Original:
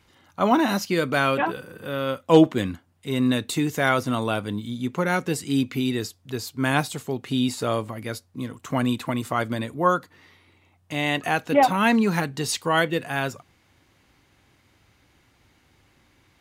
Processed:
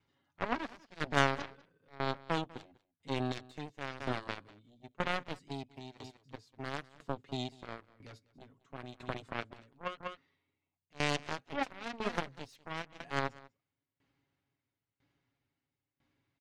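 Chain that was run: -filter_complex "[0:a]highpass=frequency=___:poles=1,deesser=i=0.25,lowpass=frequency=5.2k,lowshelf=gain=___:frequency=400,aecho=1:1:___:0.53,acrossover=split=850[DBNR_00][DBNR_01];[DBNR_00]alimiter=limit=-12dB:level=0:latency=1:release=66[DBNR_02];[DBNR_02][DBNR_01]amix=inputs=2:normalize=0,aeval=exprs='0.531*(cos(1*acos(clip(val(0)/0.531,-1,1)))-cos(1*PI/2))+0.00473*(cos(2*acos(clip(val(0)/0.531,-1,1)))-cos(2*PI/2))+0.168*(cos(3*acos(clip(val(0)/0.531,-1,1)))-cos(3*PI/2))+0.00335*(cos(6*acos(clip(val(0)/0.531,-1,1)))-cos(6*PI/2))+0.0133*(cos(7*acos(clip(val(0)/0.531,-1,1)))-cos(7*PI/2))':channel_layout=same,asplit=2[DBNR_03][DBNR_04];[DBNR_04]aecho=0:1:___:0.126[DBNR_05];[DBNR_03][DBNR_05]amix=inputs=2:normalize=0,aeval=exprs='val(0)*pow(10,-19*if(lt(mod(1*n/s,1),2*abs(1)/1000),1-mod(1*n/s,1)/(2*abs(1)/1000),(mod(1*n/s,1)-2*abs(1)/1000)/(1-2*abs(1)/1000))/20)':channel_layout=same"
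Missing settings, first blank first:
110, 6, 7.2, 196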